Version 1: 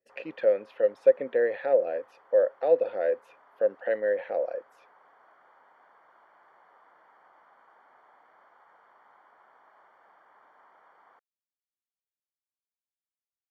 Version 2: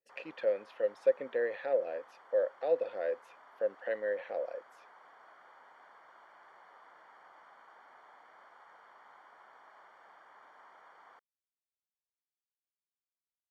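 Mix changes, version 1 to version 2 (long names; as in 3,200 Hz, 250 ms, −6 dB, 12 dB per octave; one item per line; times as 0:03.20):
speech −8.0 dB
master: add parametric band 6,900 Hz +9.5 dB 2.7 octaves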